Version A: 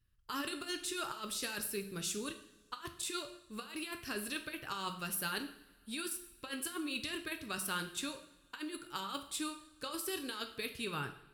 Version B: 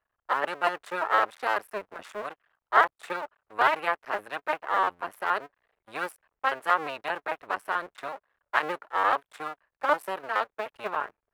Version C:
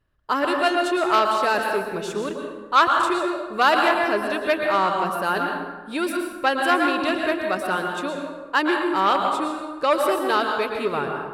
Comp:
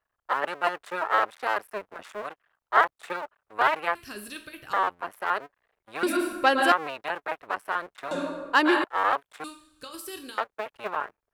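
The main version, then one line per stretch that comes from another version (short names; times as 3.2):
B
3.95–4.73 from A
6.03–6.72 from C
8.11–8.84 from C
9.44–10.38 from A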